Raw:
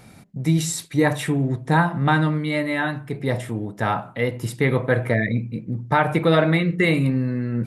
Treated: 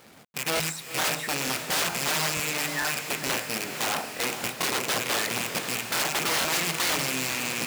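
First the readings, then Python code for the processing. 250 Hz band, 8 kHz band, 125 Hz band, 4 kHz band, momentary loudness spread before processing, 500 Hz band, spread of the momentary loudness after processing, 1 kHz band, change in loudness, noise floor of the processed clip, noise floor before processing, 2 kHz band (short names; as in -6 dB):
-14.5 dB, +7.5 dB, -19.0 dB, +7.0 dB, 8 LU, -10.0 dB, 4 LU, -6.0 dB, -4.5 dB, -43 dBFS, -46 dBFS, -2.5 dB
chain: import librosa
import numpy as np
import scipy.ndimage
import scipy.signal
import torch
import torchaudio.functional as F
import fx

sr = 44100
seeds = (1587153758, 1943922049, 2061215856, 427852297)

y = fx.rattle_buzz(x, sr, strikes_db=-28.0, level_db=-9.0)
y = fx.high_shelf(y, sr, hz=3600.0, db=-11.5)
y = fx.rev_fdn(y, sr, rt60_s=0.52, lf_ratio=1.0, hf_ratio=0.3, size_ms=38.0, drr_db=6.5)
y = fx.hpss(y, sr, part='harmonic', gain_db=-14)
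y = (np.mod(10.0 ** (21.5 / 20.0) * y + 1.0, 2.0) - 1.0) / 10.0 ** (21.5 / 20.0)
y = fx.quant_companded(y, sr, bits=4)
y = fx.highpass(y, sr, hz=350.0, slope=6)
y = fx.echo_diffused(y, sr, ms=503, feedback_pct=56, wet_db=-8.0)
y = fx.buffer_crackle(y, sr, first_s=0.55, period_s=0.45, block=1024, kind='repeat')
y = y * librosa.db_to_amplitude(2.0)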